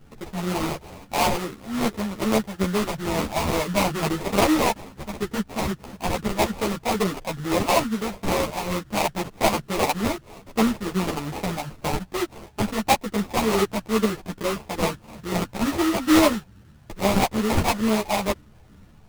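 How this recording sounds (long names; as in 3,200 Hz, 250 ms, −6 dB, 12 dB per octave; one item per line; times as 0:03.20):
phaser sweep stages 6, 2.3 Hz, lowest notch 390–1,300 Hz
aliases and images of a low sample rate 1,600 Hz, jitter 20%
a shimmering, thickened sound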